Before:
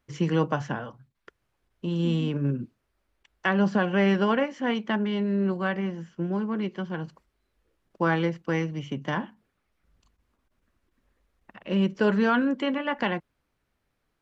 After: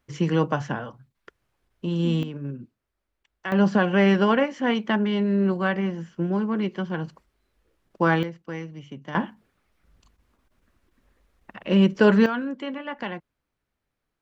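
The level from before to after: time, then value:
+2 dB
from 0:02.23 −6.5 dB
from 0:03.52 +3.5 dB
from 0:08.23 −7 dB
from 0:09.15 +6 dB
from 0:12.26 −5 dB

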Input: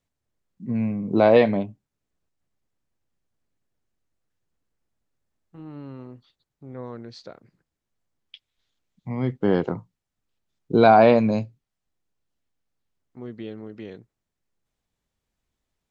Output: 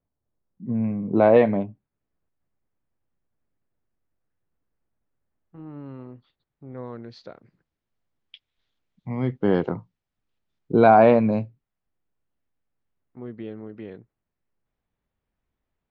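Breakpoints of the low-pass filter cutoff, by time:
1,100 Hz
from 0:00.84 2,000 Hz
from 0:05.86 2,700 Hz
from 0:06.78 4,000 Hz
from 0:10.72 2,300 Hz

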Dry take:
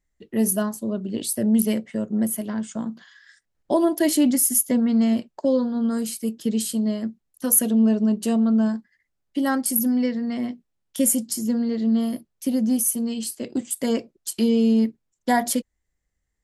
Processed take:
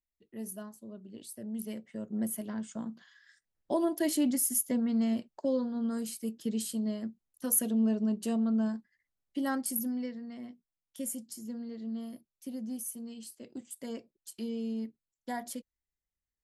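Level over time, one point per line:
0:01.52 −19.5 dB
0:02.26 −9.5 dB
0:09.61 −9.5 dB
0:10.30 −17 dB

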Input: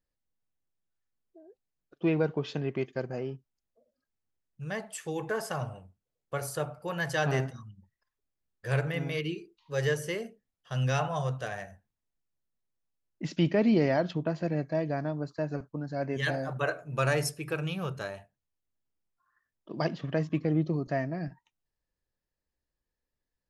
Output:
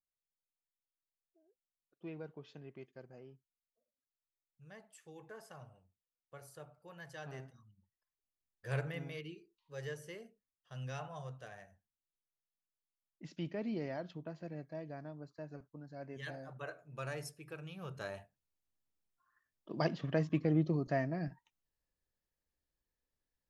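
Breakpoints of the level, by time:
0:07.36 −19.5 dB
0:08.79 −8 dB
0:09.35 −15 dB
0:17.73 −15 dB
0:18.15 −3.5 dB

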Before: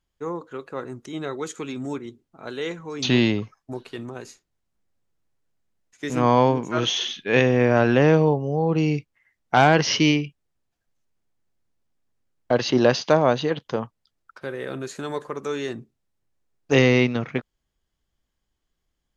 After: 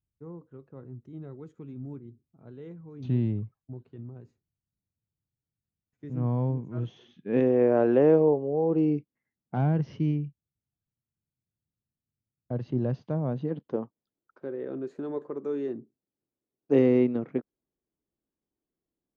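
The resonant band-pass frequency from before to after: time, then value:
resonant band-pass, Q 1.5
0:07.06 110 Hz
0:07.54 410 Hz
0:08.62 410 Hz
0:09.82 120 Hz
0:13.19 120 Hz
0:13.77 320 Hz

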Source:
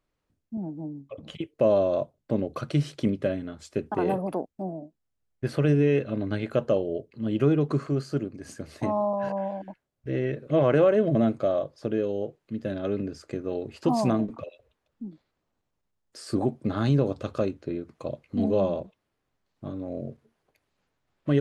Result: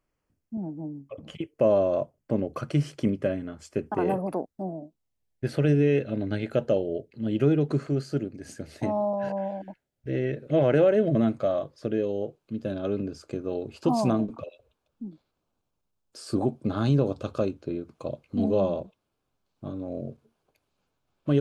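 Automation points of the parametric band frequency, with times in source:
parametric band −12.5 dB 0.24 octaves
0:04.13 3,800 Hz
0:05.47 1,100 Hz
0:11.07 1,100 Hz
0:11.42 320 Hz
0:12.17 1,900 Hz

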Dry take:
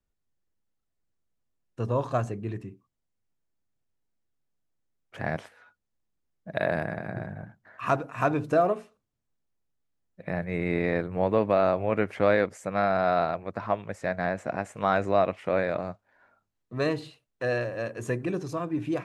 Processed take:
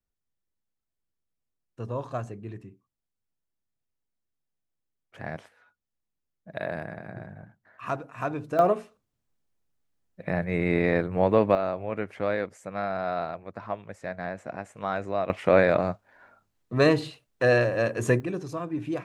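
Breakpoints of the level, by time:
−5.5 dB
from 0:08.59 +3 dB
from 0:11.55 −5.5 dB
from 0:15.30 +7 dB
from 0:18.20 −1.5 dB

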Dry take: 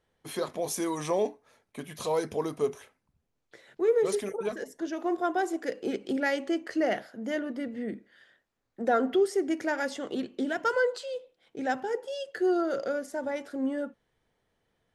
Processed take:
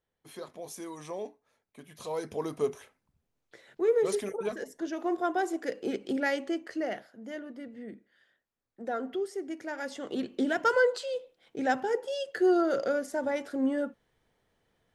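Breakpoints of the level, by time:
0:01.81 −10.5 dB
0:02.56 −1 dB
0:06.32 −1 dB
0:07.14 −8.5 dB
0:09.65 −8.5 dB
0:10.34 +2 dB

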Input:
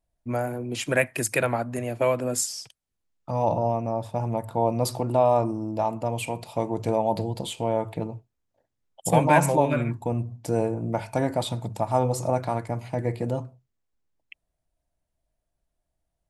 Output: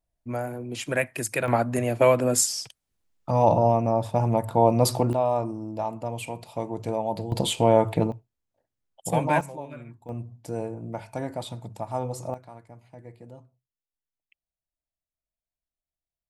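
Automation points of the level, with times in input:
−3 dB
from 0:01.48 +4.5 dB
from 0:05.13 −4 dB
from 0:07.32 +7 dB
from 0:08.12 −4.5 dB
from 0:09.41 −16.5 dB
from 0:10.09 −7 dB
from 0:12.34 −18 dB

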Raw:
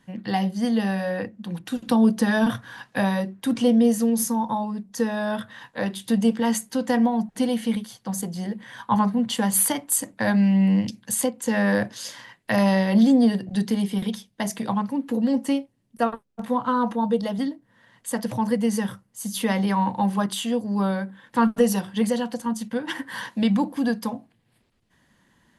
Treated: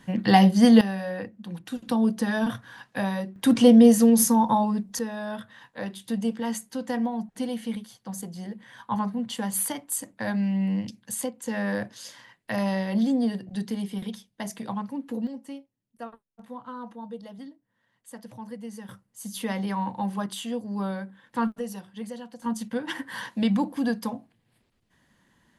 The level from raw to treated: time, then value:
+7.5 dB
from 0:00.81 −5 dB
from 0:03.36 +4 dB
from 0:04.99 −7 dB
from 0:15.27 −16 dB
from 0:18.89 −6.5 dB
from 0:21.52 −14 dB
from 0:22.42 −2.5 dB

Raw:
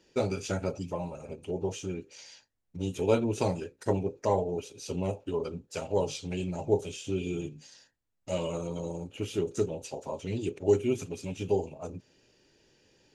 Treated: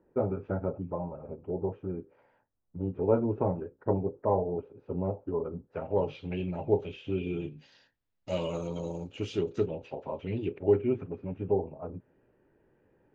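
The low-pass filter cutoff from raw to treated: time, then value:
low-pass filter 24 dB per octave
0:05.57 1,300 Hz
0:06.22 2,900 Hz
0:07.26 2,900 Hz
0:08.59 6,000 Hz
0:09.26 6,000 Hz
0:09.79 2,800 Hz
0:10.48 2,800 Hz
0:11.14 1,600 Hz

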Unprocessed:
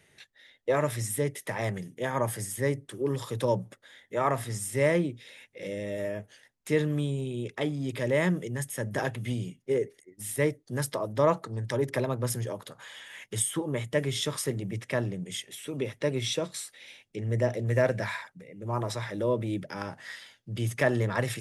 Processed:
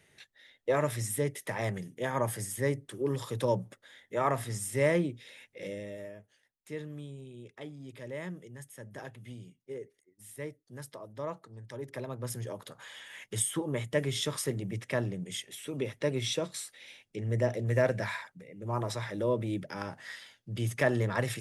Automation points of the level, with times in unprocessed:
0:05.63 −2 dB
0:06.19 −14 dB
0:11.68 −14 dB
0:12.73 −2 dB

